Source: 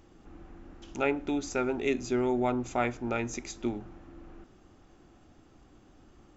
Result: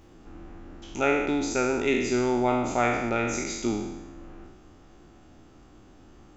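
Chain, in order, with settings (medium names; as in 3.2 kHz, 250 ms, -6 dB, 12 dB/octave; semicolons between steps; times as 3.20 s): spectral sustain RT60 1.10 s; trim +2.5 dB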